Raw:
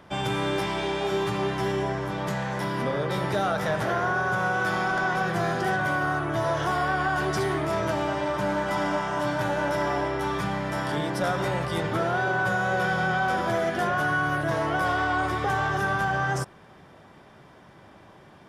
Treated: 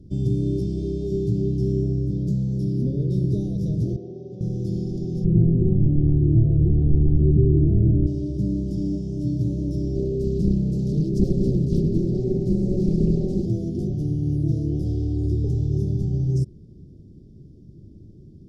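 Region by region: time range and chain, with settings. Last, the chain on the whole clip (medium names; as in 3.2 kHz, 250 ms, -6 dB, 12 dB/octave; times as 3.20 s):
3.96–4.41 s: band-pass 590–5400 Hz + tilt EQ -3.5 dB/octave
5.24–8.07 s: CVSD coder 16 kbps + tilt EQ -2 dB/octave
9.95–13.46 s: comb 5.2 ms, depth 91% + loudspeaker Doppler distortion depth 0.9 ms
whole clip: elliptic band-stop 360–5000 Hz, stop band 80 dB; RIAA curve playback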